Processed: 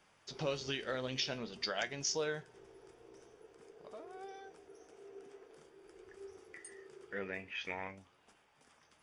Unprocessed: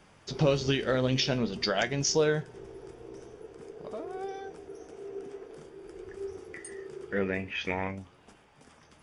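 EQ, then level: bass shelf 430 Hz -10.5 dB; -7.0 dB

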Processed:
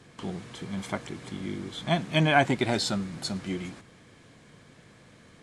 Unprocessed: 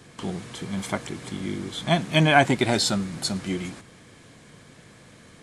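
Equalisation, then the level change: treble shelf 8.8 kHz -9.5 dB; -4.0 dB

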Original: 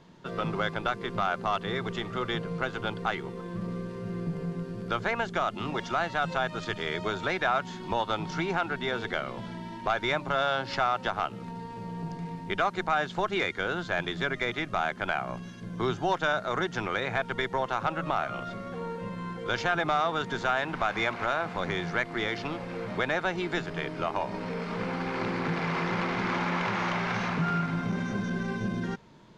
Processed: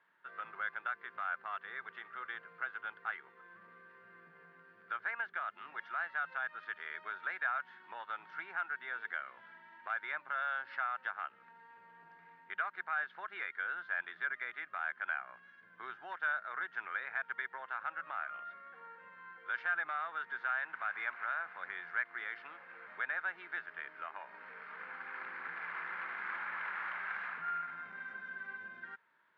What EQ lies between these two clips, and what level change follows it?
band-pass filter 1.6 kHz, Q 3.5; distance through air 310 m; tilt EQ +2 dB/octave; -2.0 dB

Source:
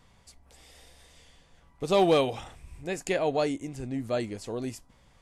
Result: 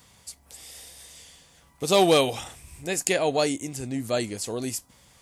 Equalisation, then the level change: high-pass 62 Hz; treble shelf 3.8 kHz +12 dB; treble shelf 9.4 kHz +6 dB; +2.5 dB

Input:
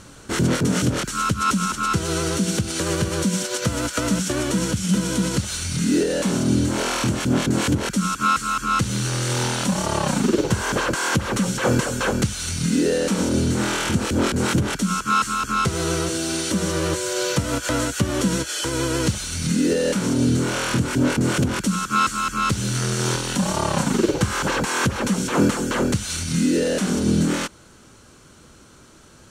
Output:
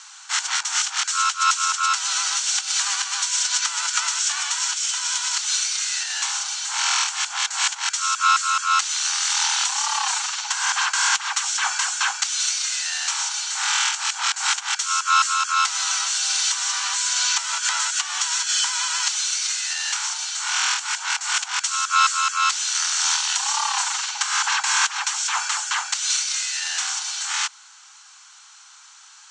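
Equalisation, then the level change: steep high-pass 770 Hz 96 dB/octave; steep low-pass 7.7 kHz 48 dB/octave; treble shelf 3 kHz +10.5 dB; 0.0 dB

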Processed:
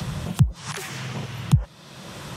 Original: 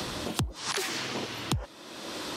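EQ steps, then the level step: dynamic bell 4.4 kHz, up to -7 dB, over -49 dBFS, Q 2; resonant low shelf 210 Hz +9.5 dB, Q 3; 0.0 dB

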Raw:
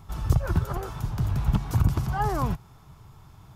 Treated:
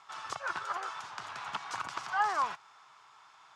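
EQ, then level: Chebyshev band-pass 1.2–8.8 kHz, order 2; distance through air 90 m; +5.0 dB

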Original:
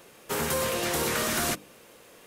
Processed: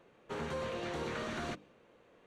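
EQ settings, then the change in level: band-stop 5.1 kHz, Q 6.9; dynamic bell 4.9 kHz, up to +5 dB, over -46 dBFS, Q 0.86; tape spacing loss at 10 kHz 28 dB; -7.5 dB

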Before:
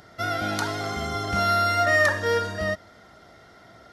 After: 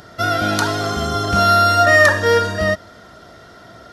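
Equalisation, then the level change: band-stop 800 Hz, Q 12; band-stop 2.1 kHz, Q 9.6; +9.0 dB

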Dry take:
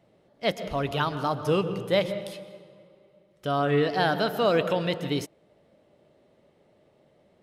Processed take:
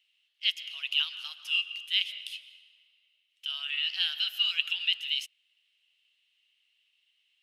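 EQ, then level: ladder high-pass 2.7 kHz, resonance 80%; +8.0 dB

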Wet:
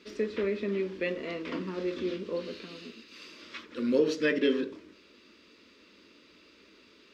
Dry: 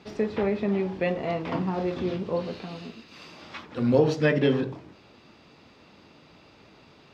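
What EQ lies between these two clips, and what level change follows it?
bass shelf 200 Hz -8.5 dB; static phaser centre 320 Hz, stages 4; 0.0 dB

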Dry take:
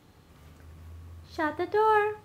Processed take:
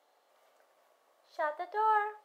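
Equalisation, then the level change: band-stop 2.5 kHz, Q 19; dynamic bell 1.3 kHz, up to +5 dB, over -36 dBFS, Q 1.3; ladder high-pass 550 Hz, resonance 60%; 0.0 dB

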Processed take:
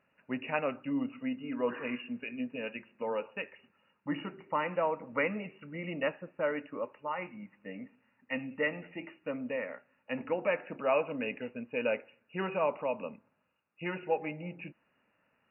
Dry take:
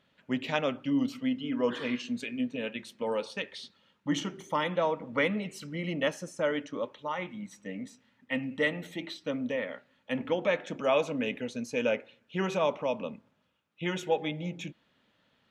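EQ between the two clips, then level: brick-wall FIR low-pass 2.9 kHz; bass shelf 400 Hz -7.5 dB; peaking EQ 2 kHz -3 dB 0.65 oct; 0.0 dB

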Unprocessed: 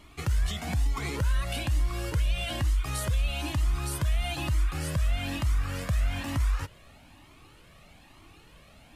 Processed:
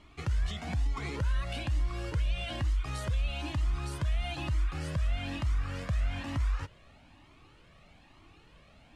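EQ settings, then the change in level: distance through air 72 m; -3.5 dB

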